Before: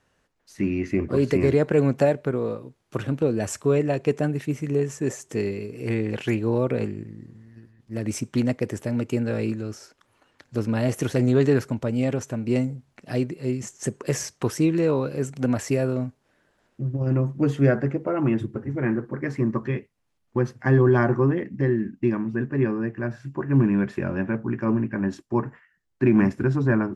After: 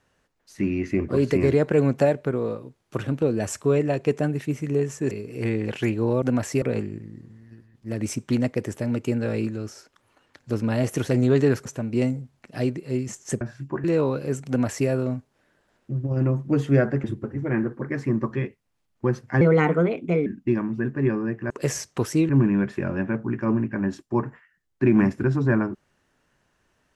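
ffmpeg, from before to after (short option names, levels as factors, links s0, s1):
-filter_complex "[0:a]asplit=12[s0][s1][s2][s3][s4][s5][s6][s7][s8][s9][s10][s11];[s0]atrim=end=5.112[s12];[s1]atrim=start=5.558:end=6.672[s13];[s2]atrim=start=15.378:end=15.782[s14];[s3]atrim=start=6.668:end=11.712[s15];[s4]atrim=start=12.198:end=13.952[s16];[s5]atrim=start=23.058:end=23.492[s17];[s6]atrim=start=14.738:end=17.942[s18];[s7]atrim=start=18.358:end=20.734[s19];[s8]atrim=start=20.73:end=21.82,asetpts=PTS-STARTPTS,asetrate=56448,aresample=44100[s20];[s9]atrim=start=21.816:end=23.062[s21];[s10]atrim=start=13.948:end=14.742[s22];[s11]atrim=start=23.488[s23];[s12][s13]acrossfade=d=0.004:c1=hsin:c2=hsin[s24];[s24][s14]acrossfade=d=0.004:c1=hsin:c2=hsin[s25];[s25][s15]acrossfade=d=0.004:c1=hsin:c2=hsin[s26];[s26][s16]acrossfade=d=0.004:c1=hsin:c2=hsin[s27];[s27][s17]acrossfade=d=0.004:c1=hsin:c2=hsin[s28];[s28][s18]acrossfade=d=0.004:c1=hsin:c2=hsin[s29];[s29][s19]acrossfade=d=0.004:c1=hsin:c2=hsin[s30];[s30][s20]acrossfade=d=0.004:c1=hsin:c2=hsin[s31];[s31][s21]acrossfade=d=0.004:c1=hsin:c2=hsin[s32];[s32][s22]acrossfade=d=0.004:c1=hsin:c2=hsin[s33];[s33][s23]acrossfade=d=0.004:c1=hsin:c2=hsin"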